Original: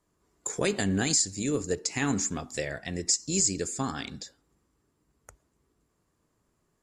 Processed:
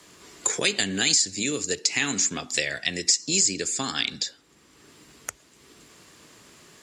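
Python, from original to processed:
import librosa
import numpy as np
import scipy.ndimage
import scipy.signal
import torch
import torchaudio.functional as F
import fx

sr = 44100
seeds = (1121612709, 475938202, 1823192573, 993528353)

y = fx.weighting(x, sr, curve='D')
y = fx.band_squash(y, sr, depth_pct=70)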